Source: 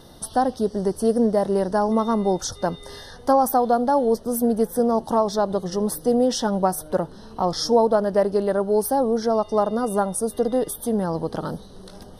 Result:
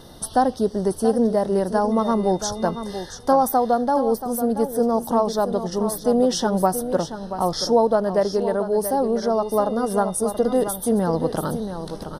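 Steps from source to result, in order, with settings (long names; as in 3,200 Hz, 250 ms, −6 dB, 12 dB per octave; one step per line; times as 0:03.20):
single-tap delay 680 ms −10 dB
speech leveller within 4 dB 2 s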